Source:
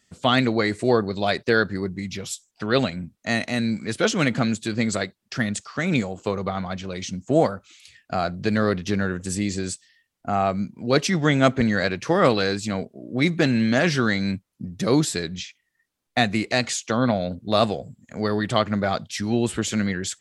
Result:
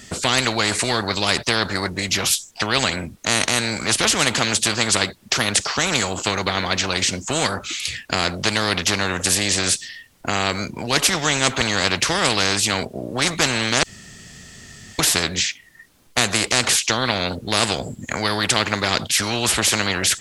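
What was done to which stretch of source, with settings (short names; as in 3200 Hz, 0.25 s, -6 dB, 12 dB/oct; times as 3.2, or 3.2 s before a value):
13.83–14.99 room tone
whole clip: low shelf 350 Hz +4.5 dB; spectral compressor 4:1; gain +1.5 dB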